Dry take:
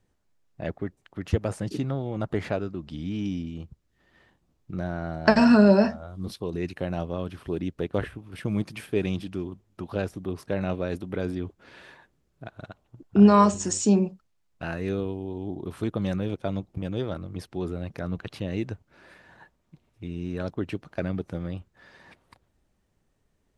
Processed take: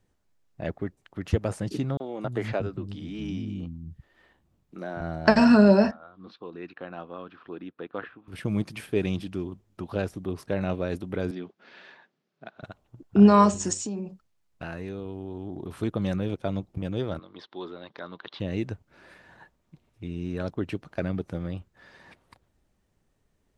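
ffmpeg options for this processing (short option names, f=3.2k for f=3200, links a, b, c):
-filter_complex "[0:a]asettb=1/sr,asplit=3[a][b][c];[a]atrim=end=1.974[d];[b]atrim=start=1.97:end=5.01,asetpts=PTS-STARTPTS,afade=t=in:d=0.004:c=qsin,afade=t=out:st=3.036:d=0.004:c=qsin,acrossover=split=220|5700[e][f][g];[f]adelay=30[h];[e]adelay=270[i];[i][h][g]amix=inputs=3:normalize=0,atrim=end_sample=134064[j];[c]atrim=start=5.006[k];[d][j]acrossfade=d=0.004:c1=hsin:c2=qsin[l];[l][k]acrossfade=d=0.004:c1=qsin:c2=hsin,asettb=1/sr,asplit=3[m][n][o];[m]atrim=end=5.914[p];[n]atrim=start=5.91:end=8.28,asetpts=PTS-STARTPTS,afade=t=in:d=0.004:c=qsin,afade=t=out:st=2.366:d=0.004:c=qsin,highpass=390,equalizer=f=400:t=q:w=4:g=-7,equalizer=f=600:t=q:w=4:g=-9,equalizer=f=860:t=q:w=4:g=-4,equalizer=f=1.3k:t=q:w=4:g=3,equalizer=f=2.1k:t=q:w=4:g=-8,equalizer=f=3k:t=q:w=4:g=-6,lowpass=f=3.2k:w=0.5412,lowpass=f=3.2k:w=1.3066[q];[o]atrim=start=8.276[r];[p][q]acrossfade=d=0.004:c1=hsin:c2=qsin[s];[s][r]acrossfade=d=0.004:c1=qsin:c2=hsin,asettb=1/sr,asplit=3[t][u][v];[t]atrim=end=11.314[w];[u]atrim=start=11.31:end=12.63,asetpts=PTS-STARTPTS,afade=t=in:d=0.004:c=qsin,afade=t=out:st=1.316:d=0.004:c=qsin,highpass=f=190:w=0.5412,highpass=f=190:w=1.3066,equalizer=f=300:t=q:w=4:g=-8,equalizer=f=500:t=q:w=4:g=-4,equalizer=f=1k:t=q:w=4:g=-3,lowpass=f=5.4k:w=0.5412,lowpass=f=5.4k:w=1.3066[x];[v]atrim=start=12.626[y];[w][x]acrossfade=d=0.004:c1=hsin:c2=qsin[z];[z][y]acrossfade=d=0.004:c1=qsin:c2=hsin,asplit=3[aa][ab][ac];[aa]afade=t=out:st=13.73:d=0.02[ad];[ab]acompressor=threshold=-30dB:ratio=6:attack=3.2:release=140:knee=1:detection=peak,afade=t=in:st=13.73:d=0.02,afade=t=out:st=15.69:d=0.02[ae];[ac]afade=t=in:st=15.69:d=0.02[af];[ad][ae][af]amix=inputs=3:normalize=0,asettb=1/sr,asplit=3[ag][ah][ai];[ag]atrim=end=17.194[aj];[ah]atrim=start=17.19:end=18.4,asetpts=PTS-STARTPTS,afade=t=in:d=0.004:c=qsin,afade=t=out:st=1.206:d=0.004:c=qsin,highpass=420,equalizer=f=480:t=q:w=4:g=-4,equalizer=f=690:t=q:w=4:g=-5,equalizer=f=1k:t=q:w=4:g=5,equalizer=f=2.5k:t=q:w=4:g=-7,equalizer=f=3.6k:t=q:w=4:g=9,lowpass=f=4.3k:w=0.5412,lowpass=f=4.3k:w=1.3066[ak];[ai]atrim=start=18.396[al];[aj][ak]acrossfade=d=0.004:c1=hsin:c2=qsin[am];[am][al]acrossfade=d=0.004:c1=qsin:c2=hsin"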